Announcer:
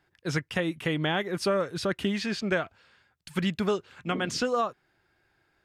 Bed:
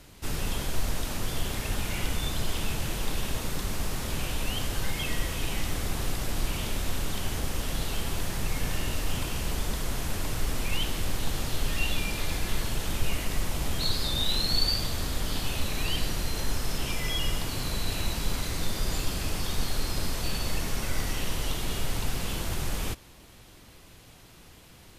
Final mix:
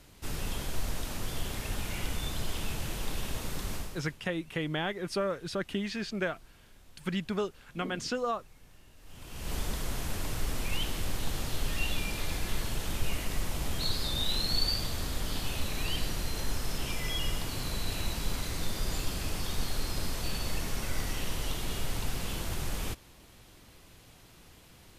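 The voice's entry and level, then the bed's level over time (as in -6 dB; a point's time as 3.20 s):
3.70 s, -5.0 dB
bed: 3.76 s -4.5 dB
4.23 s -27.5 dB
8.96 s -27.5 dB
9.54 s -3.5 dB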